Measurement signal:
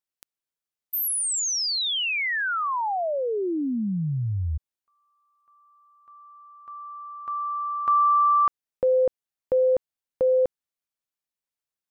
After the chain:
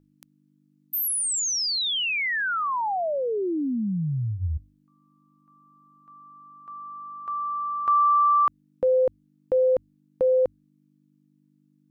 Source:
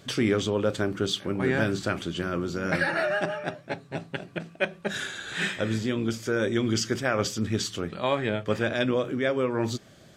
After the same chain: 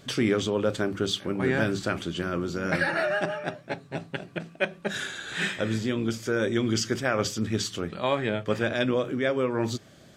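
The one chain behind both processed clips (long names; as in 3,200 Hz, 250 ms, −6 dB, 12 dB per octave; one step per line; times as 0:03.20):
hum with harmonics 50 Hz, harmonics 6, −62 dBFS −1 dB per octave
mains-hum notches 50/100 Hz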